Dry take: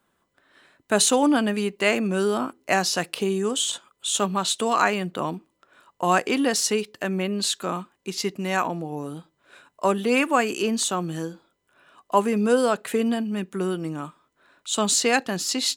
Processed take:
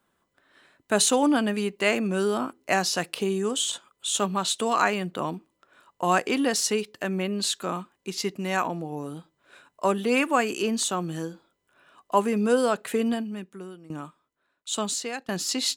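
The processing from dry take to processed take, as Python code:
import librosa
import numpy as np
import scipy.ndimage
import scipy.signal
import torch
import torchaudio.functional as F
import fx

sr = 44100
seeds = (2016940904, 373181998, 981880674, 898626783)

y = fx.tremolo_decay(x, sr, direction='decaying', hz=1.3, depth_db=18, at=(13.13, 15.29))
y = y * 10.0 ** (-2.0 / 20.0)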